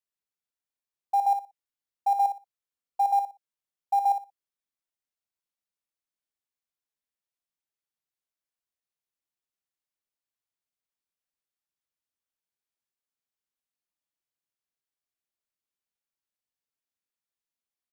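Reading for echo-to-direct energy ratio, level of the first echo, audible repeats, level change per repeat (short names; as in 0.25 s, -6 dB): -8.0 dB, -8.0 dB, 2, -14.0 dB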